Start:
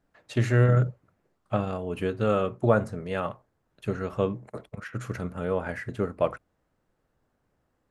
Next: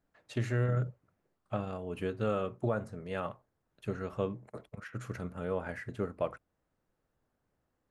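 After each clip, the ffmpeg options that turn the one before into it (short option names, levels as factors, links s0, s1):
-af "alimiter=limit=0.211:level=0:latency=1:release=439,volume=0.473"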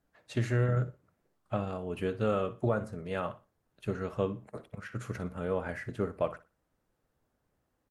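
-af "aecho=1:1:60|120|180:0.15|0.0419|0.0117,volume=1.33" -ar 48000 -c:a libvorbis -b:a 64k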